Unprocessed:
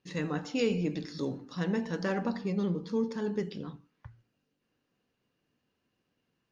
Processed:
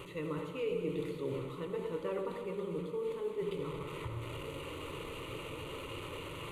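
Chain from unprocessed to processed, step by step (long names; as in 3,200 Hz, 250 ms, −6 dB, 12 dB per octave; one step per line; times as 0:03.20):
linear delta modulator 64 kbit/s, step −41 dBFS
high-shelf EQ 3,900 Hz −11.5 dB
reversed playback
downward compressor 5 to 1, threshold −40 dBFS, peak gain reduction 14.5 dB
reversed playback
phaser with its sweep stopped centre 1,100 Hz, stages 8
delay that swaps between a low-pass and a high-pass 114 ms, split 890 Hz, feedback 67%, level −6 dB
on a send at −9.5 dB: convolution reverb RT60 0.60 s, pre-delay 73 ms
on the sum: level +8 dB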